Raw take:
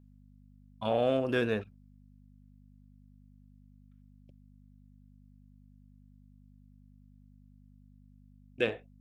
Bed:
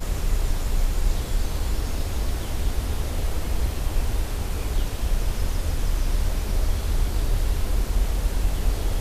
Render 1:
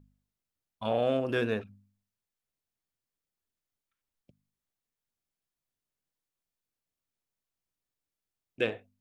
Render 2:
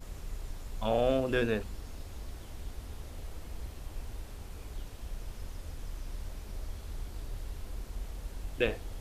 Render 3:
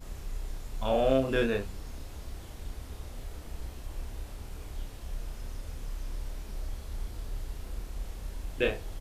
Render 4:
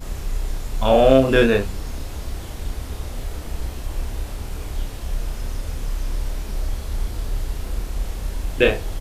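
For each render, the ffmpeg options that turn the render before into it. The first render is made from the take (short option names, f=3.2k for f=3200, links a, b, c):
-af "bandreject=f=50:t=h:w=4,bandreject=f=100:t=h:w=4,bandreject=f=150:t=h:w=4,bandreject=f=200:t=h:w=4,bandreject=f=250:t=h:w=4"
-filter_complex "[1:a]volume=-17dB[a];[0:a][a]amix=inputs=2:normalize=0"
-filter_complex "[0:a]asplit=2[a][b];[b]adelay=30,volume=-3.5dB[c];[a][c]amix=inputs=2:normalize=0"
-af "volume=12dB,alimiter=limit=-2dB:level=0:latency=1"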